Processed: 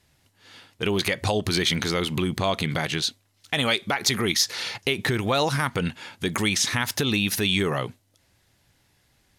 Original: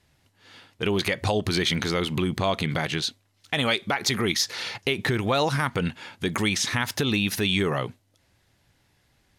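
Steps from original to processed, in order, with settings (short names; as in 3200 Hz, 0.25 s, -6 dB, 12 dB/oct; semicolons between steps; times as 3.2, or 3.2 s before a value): high shelf 5000 Hz +5.5 dB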